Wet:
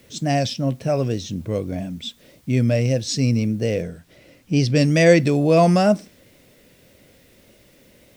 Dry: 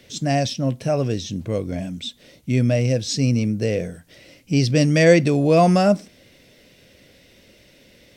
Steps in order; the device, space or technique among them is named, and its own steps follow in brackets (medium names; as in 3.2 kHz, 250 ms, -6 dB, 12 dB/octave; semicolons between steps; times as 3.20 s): plain cassette with noise reduction switched in (tape noise reduction on one side only decoder only; wow and flutter; white noise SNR 39 dB); 3.82–4.76 s: treble shelf 7.8 kHz -7 dB